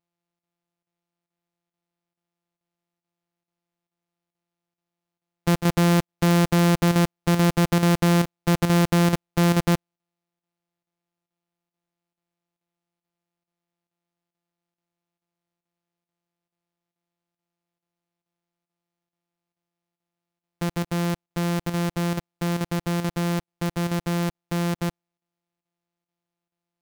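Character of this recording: a buzz of ramps at a fixed pitch in blocks of 256 samples; chopped level 2.3 Hz, depth 60%, duty 90%

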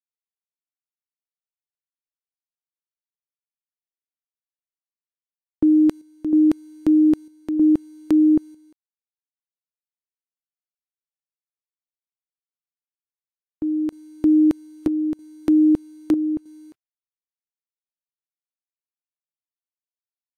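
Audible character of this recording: a quantiser's noise floor 10-bit, dither none; chopped level 0.79 Hz, depth 60%, duty 75%; AAC

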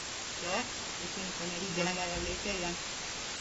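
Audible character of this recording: a buzz of ramps at a fixed pitch in blocks of 16 samples; chopped level 0.59 Hz, depth 60%, duty 15%; a quantiser's noise floor 6-bit, dither triangular; AAC

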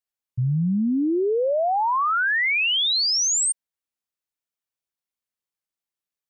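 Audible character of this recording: noise floor -91 dBFS; spectral tilt -3.0 dB/oct

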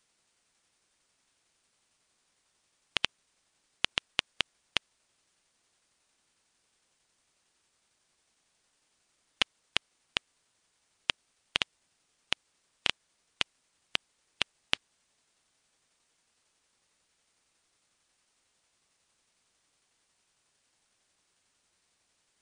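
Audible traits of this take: a quantiser's noise floor 12-bit, dither triangular; tremolo saw down 11 Hz, depth 30%; MP3

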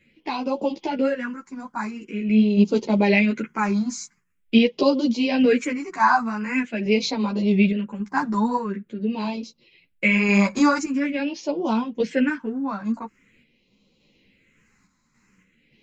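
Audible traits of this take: phasing stages 4, 0.45 Hz, lowest notch 470–1700 Hz; random-step tremolo; a shimmering, thickened sound

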